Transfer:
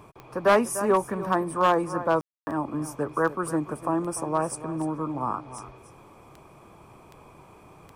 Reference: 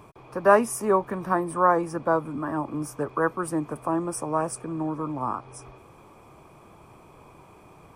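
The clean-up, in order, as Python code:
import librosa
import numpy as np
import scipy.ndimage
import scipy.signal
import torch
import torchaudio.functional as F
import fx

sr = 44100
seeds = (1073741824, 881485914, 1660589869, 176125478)

y = fx.fix_declip(x, sr, threshold_db=-13.5)
y = fx.fix_declick_ar(y, sr, threshold=10.0)
y = fx.fix_ambience(y, sr, seeds[0], print_start_s=6.4, print_end_s=6.9, start_s=2.21, end_s=2.47)
y = fx.fix_echo_inverse(y, sr, delay_ms=296, level_db=-14.0)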